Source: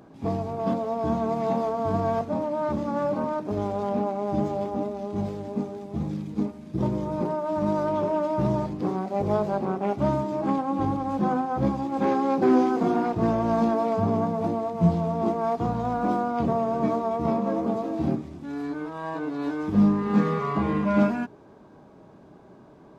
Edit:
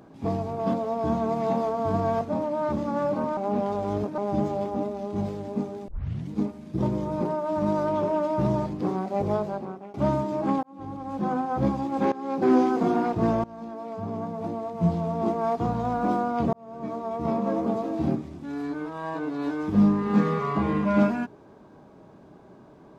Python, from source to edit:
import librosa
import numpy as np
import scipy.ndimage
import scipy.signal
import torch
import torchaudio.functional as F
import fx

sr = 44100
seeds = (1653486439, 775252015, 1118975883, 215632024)

y = fx.edit(x, sr, fx.reverse_span(start_s=3.37, length_s=0.81),
    fx.tape_start(start_s=5.88, length_s=0.42),
    fx.fade_out_to(start_s=9.19, length_s=0.75, floor_db=-23.5),
    fx.fade_in_span(start_s=10.63, length_s=0.89),
    fx.fade_in_from(start_s=12.12, length_s=0.4, floor_db=-19.5),
    fx.fade_in_from(start_s=13.44, length_s=2.01, floor_db=-22.5),
    fx.fade_in_span(start_s=16.53, length_s=0.95), tone=tone)